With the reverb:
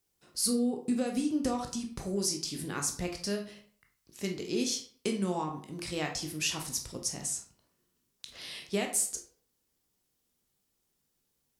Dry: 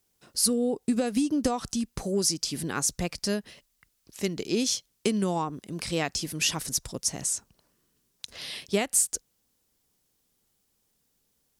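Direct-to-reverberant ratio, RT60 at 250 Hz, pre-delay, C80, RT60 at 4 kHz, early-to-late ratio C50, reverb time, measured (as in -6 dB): 2.5 dB, 0.50 s, 13 ms, 13.0 dB, 0.35 s, 8.5 dB, 0.50 s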